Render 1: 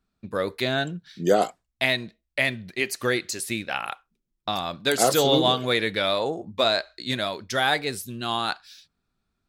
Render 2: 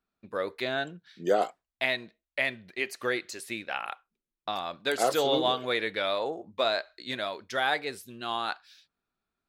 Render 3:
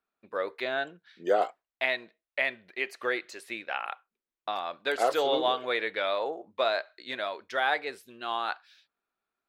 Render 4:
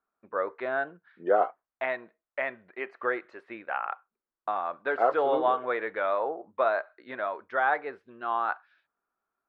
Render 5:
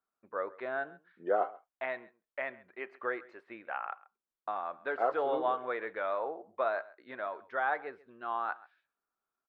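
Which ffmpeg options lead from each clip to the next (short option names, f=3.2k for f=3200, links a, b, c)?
-af "bass=f=250:g=-11,treble=f=4k:g=-8,volume=-4dB"
-af "bass=f=250:g=-15,treble=f=4k:g=-10,volume=1dB"
-af "lowpass=f=1.3k:t=q:w=1.6"
-af "aecho=1:1:134:0.0891,volume=-6dB"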